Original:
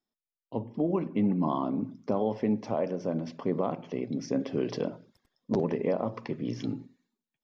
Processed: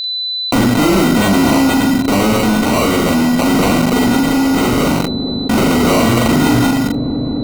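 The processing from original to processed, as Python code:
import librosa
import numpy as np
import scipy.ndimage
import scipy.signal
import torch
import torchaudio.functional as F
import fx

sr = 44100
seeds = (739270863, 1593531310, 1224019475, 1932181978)

p1 = scipy.signal.sosfilt(scipy.signal.butter(4, 60.0, 'highpass', fs=sr, output='sos'), x)
p2 = fx.peak_eq(p1, sr, hz=260.0, db=9.0, octaves=0.68)
p3 = fx.notch(p2, sr, hz=400.0, q=12.0)
p4 = fx.rider(p3, sr, range_db=10, speed_s=0.5)
p5 = p3 + (p4 * librosa.db_to_amplitude(-2.0))
p6 = fx.sample_hold(p5, sr, seeds[0], rate_hz=1700.0, jitter_pct=0)
p7 = fx.fuzz(p6, sr, gain_db=37.0, gate_db=-42.0)
p8 = p7 + 10.0 ** (-45.0 / 20.0) * np.sin(2.0 * np.pi * 4000.0 * np.arange(len(p7)) / sr)
p9 = fx.tremolo_random(p8, sr, seeds[1], hz=1.2, depth_pct=70)
p10 = fx.doubler(p9, sr, ms=41.0, db=-2.5)
p11 = fx.echo_wet_lowpass(p10, sr, ms=211, feedback_pct=84, hz=510.0, wet_db=-22.5)
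y = fx.env_flatten(p11, sr, amount_pct=70)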